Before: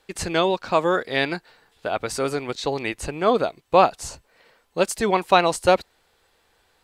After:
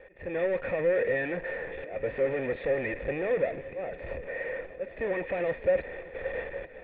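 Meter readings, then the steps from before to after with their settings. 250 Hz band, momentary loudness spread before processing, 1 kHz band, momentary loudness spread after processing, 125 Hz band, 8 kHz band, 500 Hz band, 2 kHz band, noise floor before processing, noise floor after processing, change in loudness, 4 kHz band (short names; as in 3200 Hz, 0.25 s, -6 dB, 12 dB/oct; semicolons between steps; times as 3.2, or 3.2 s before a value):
-10.5 dB, 11 LU, -20.5 dB, 10 LU, -8.5 dB, under -40 dB, -5.5 dB, -5.5 dB, -65 dBFS, -46 dBFS, -9.0 dB, under -20 dB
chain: gate with hold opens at -52 dBFS; low shelf 110 Hz +10 dB; power-law curve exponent 0.35; AGC gain up to 12 dB; auto swell 0.366 s; in parallel at -11 dB: bit-crush 4-bit; on the sum: hard clip -9.5 dBFS, distortion -9 dB; vocal tract filter e; on a send: multi-head echo 0.288 s, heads second and third, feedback 67%, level -20 dB; on the sum: gain -7.5 dB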